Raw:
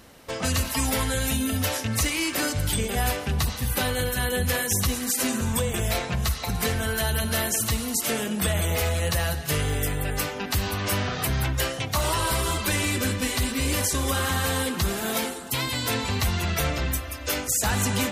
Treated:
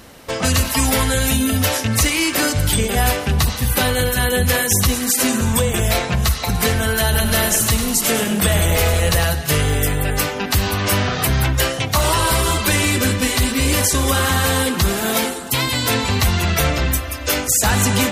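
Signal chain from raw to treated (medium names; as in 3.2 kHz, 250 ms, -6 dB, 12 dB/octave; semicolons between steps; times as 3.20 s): 7.02–9.25 s: frequency-shifting echo 103 ms, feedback 37%, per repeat -34 Hz, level -9 dB; trim +8 dB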